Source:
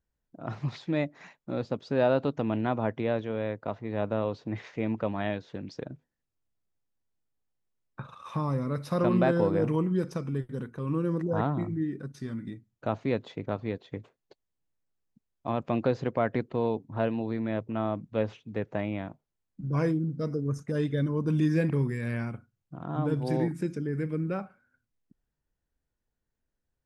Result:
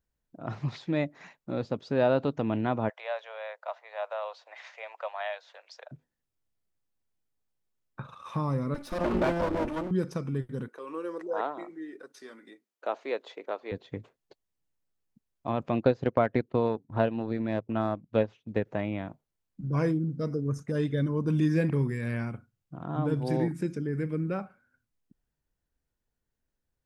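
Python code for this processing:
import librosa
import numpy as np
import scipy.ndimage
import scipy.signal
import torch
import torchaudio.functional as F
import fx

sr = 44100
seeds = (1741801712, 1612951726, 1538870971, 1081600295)

y = fx.steep_highpass(x, sr, hz=590.0, slope=48, at=(2.88, 5.91), fade=0.02)
y = fx.lower_of_two(y, sr, delay_ms=3.4, at=(8.74, 9.91))
y = fx.highpass(y, sr, hz=400.0, slope=24, at=(10.68, 13.72))
y = fx.transient(y, sr, attack_db=5, sustain_db=-11, at=(15.79, 18.65), fade=0.02)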